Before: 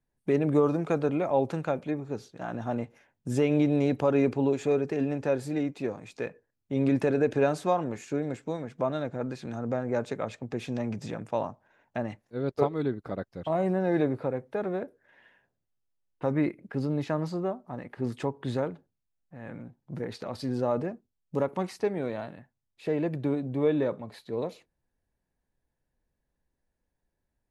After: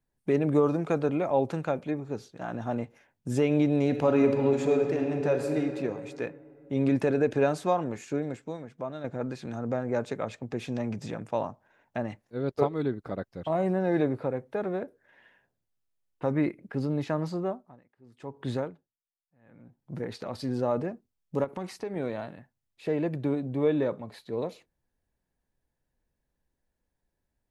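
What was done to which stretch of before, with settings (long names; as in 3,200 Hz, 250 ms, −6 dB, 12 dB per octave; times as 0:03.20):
0:03.86–0:05.61: thrown reverb, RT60 2.7 s, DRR 4 dB
0:08.17–0:09.04: fade out quadratic, to −7.5 dB
0:17.43–0:19.93: tremolo with a sine in dB 1.2 Hz → 0.53 Hz, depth 27 dB
0:21.44–0:21.96: downward compressor, threshold −30 dBFS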